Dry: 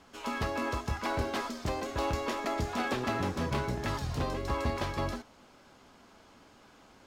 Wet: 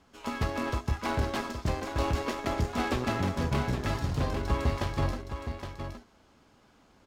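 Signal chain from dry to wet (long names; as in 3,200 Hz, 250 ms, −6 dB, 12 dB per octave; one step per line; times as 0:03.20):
harmonic generator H 7 −21 dB, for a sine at −18.5 dBFS
low-shelf EQ 200 Hz +7 dB
soft clipping −21 dBFS, distortion −16 dB
single-tap delay 817 ms −8 dB
level +2.5 dB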